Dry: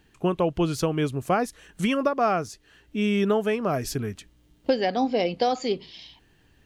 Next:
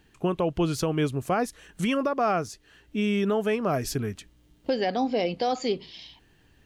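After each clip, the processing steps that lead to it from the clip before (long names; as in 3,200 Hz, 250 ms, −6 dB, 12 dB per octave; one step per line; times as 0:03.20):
brickwall limiter −16 dBFS, peak gain reduction 5 dB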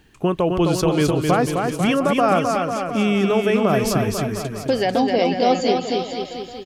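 bouncing-ball delay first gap 260 ms, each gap 0.9×, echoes 5
level +6 dB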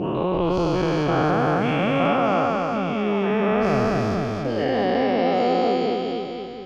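every bin's largest magnitude spread in time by 480 ms
high-frequency loss of the air 240 metres
level −8.5 dB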